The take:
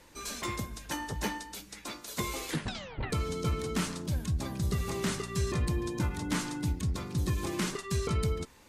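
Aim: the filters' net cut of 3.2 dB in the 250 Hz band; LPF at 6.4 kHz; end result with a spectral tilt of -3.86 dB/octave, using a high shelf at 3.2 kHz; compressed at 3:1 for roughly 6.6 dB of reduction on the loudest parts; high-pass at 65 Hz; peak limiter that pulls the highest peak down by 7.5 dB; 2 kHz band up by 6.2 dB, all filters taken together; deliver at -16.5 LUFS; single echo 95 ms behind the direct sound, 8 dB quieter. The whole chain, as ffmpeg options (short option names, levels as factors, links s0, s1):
-af "highpass=65,lowpass=6400,equalizer=f=250:t=o:g=-5,equalizer=f=2000:t=o:g=6,highshelf=f=3200:g=4.5,acompressor=threshold=0.0158:ratio=3,alimiter=level_in=2:limit=0.0631:level=0:latency=1,volume=0.501,aecho=1:1:95:0.398,volume=14.1"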